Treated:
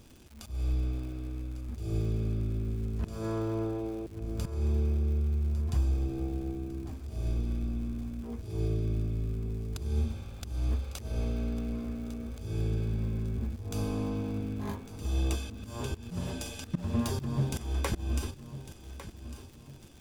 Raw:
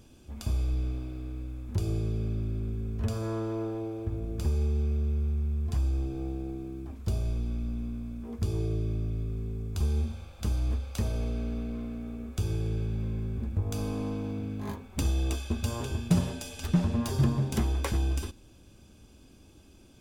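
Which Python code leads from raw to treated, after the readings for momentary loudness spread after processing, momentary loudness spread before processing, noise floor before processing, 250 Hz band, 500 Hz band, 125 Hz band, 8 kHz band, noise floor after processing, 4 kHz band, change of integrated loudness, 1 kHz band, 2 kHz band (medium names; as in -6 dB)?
10 LU, 9 LU, -55 dBFS, -2.0 dB, -1.0 dB, -2.0 dB, -2.0 dB, -49 dBFS, -2.0 dB, -2.0 dB, -1.5 dB, -1.5 dB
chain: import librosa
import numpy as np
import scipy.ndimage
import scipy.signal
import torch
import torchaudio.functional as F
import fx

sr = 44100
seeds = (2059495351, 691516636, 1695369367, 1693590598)

y = fx.auto_swell(x, sr, attack_ms=213.0)
y = fx.dmg_crackle(y, sr, seeds[0], per_s=160.0, level_db=-45.0)
y = fx.echo_feedback(y, sr, ms=1152, feedback_pct=41, wet_db=-13.5)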